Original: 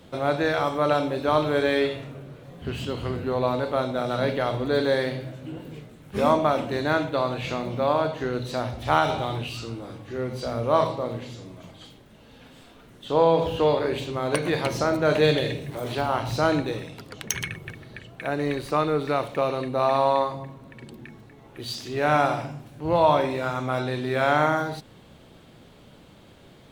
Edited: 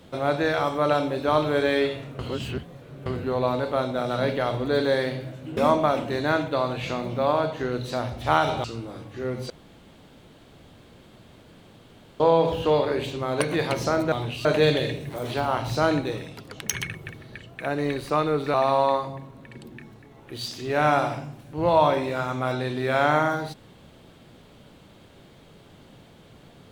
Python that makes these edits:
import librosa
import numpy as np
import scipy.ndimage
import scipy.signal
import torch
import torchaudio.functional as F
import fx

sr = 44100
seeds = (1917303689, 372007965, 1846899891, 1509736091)

y = fx.edit(x, sr, fx.reverse_span(start_s=2.19, length_s=0.87),
    fx.cut(start_s=5.57, length_s=0.61),
    fx.move(start_s=9.25, length_s=0.33, to_s=15.06),
    fx.room_tone_fill(start_s=10.44, length_s=2.7),
    fx.cut(start_s=19.15, length_s=0.66), tone=tone)